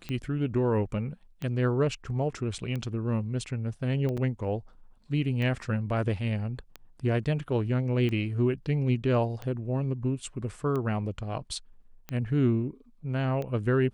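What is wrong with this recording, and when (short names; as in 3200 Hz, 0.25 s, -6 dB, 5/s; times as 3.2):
tick 45 rpm -22 dBFS
4.17–4.18 gap 6.3 ms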